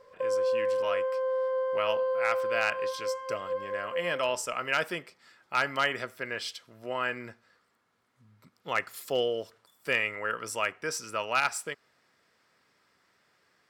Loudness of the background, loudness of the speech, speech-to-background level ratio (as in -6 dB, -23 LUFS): -30.5 LUFS, -32.0 LUFS, -1.5 dB